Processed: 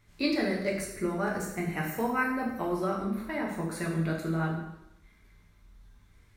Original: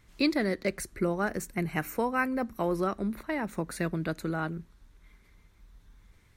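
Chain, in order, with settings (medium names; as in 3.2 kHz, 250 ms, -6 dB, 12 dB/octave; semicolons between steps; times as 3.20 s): plate-style reverb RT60 0.85 s, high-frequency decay 0.9×, DRR -3 dB; trim -5 dB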